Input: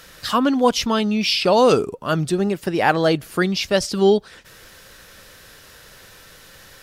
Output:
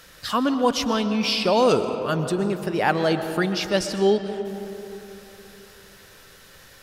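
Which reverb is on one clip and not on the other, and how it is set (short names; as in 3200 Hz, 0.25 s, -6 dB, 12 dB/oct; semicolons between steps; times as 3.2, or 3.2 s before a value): digital reverb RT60 3.3 s, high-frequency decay 0.45×, pre-delay 85 ms, DRR 8.5 dB; gain -4 dB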